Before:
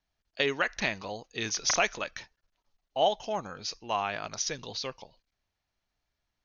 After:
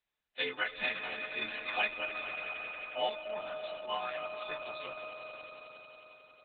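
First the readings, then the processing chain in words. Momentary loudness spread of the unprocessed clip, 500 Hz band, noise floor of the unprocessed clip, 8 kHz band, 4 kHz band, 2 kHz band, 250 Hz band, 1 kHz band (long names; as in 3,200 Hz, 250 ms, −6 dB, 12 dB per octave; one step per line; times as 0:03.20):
11 LU, −6.0 dB, −85 dBFS, can't be measured, −5.5 dB, −2.0 dB, −11.0 dB, −6.5 dB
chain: every partial snapped to a pitch grid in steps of 3 semitones
low-pass filter 4,400 Hz 24 dB per octave
parametric band 85 Hz −14 dB 1.5 octaves
echo that builds up and dies away 90 ms, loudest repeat 5, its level −14 dB
level −8 dB
Opus 8 kbit/s 48,000 Hz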